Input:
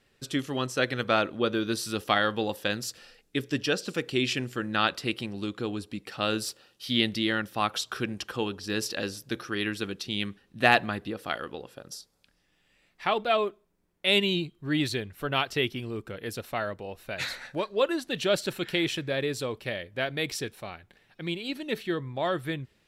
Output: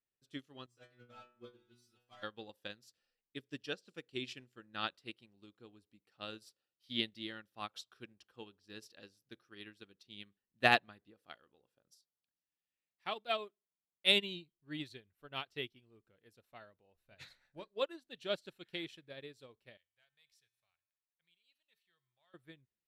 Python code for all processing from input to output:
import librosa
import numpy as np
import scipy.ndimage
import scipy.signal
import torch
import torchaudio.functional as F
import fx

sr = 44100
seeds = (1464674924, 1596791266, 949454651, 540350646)

y = fx.chain(x, sr, fx.leveller(passes=2),
    fx.stiff_resonator(f0_hz=120.0, decay_s=0.64, stiffness=0.002), at=(0.66, 2.23))
y = fx.chain(y, sr, fx.highpass(hz=65.0, slope=12),
    fx.high_shelf(hz=4500.0, db=7.0), at=(11.87, 14.12))
y = fx.chain(y, sr, fx.low_shelf(hz=150.0, db=10.5),
    fx.hum_notches(base_hz=60, count=9), at=(16.95, 17.68))
y = fx.chain(y, sr, fx.tone_stack(knobs='10-0-10'),
    fx.leveller(passes=1),
    fx.comb_fb(f0_hz=120.0, decay_s=1.3, harmonics='odd', damping=0.0, mix_pct=60), at=(19.77, 22.34))
y = fx.dynamic_eq(y, sr, hz=3800.0, q=1.4, threshold_db=-43.0, ratio=4.0, max_db=4)
y = fx.upward_expand(y, sr, threshold_db=-35.0, expansion=2.5)
y = y * 10.0 ** (-5.5 / 20.0)